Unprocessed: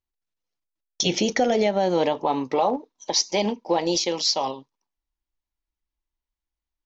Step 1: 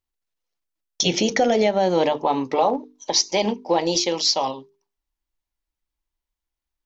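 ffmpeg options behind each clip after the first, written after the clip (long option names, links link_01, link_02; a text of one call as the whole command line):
ffmpeg -i in.wav -af "bandreject=frequency=50:width_type=h:width=6,bandreject=frequency=100:width_type=h:width=6,bandreject=frequency=150:width_type=h:width=6,bandreject=frequency=200:width_type=h:width=6,bandreject=frequency=250:width_type=h:width=6,bandreject=frequency=300:width_type=h:width=6,bandreject=frequency=350:width_type=h:width=6,bandreject=frequency=400:width_type=h:width=6,bandreject=frequency=450:width_type=h:width=6,volume=2.5dB" out.wav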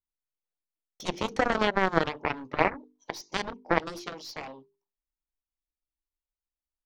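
ffmpeg -i in.wav -af "highshelf=frequency=2100:gain=-12,aeval=exprs='0.376*(cos(1*acos(clip(val(0)/0.376,-1,1)))-cos(1*PI/2))+0.15*(cos(3*acos(clip(val(0)/0.376,-1,1)))-cos(3*PI/2))+0.00531*(cos(4*acos(clip(val(0)/0.376,-1,1)))-cos(4*PI/2))':channel_layout=same,volume=3dB" out.wav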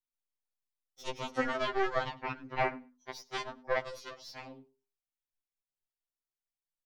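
ffmpeg -i in.wav -af "aecho=1:1:100|200:0.0708|0.0113,afftfilt=real='re*2.45*eq(mod(b,6),0)':imag='im*2.45*eq(mod(b,6),0)':win_size=2048:overlap=0.75,volume=-4dB" out.wav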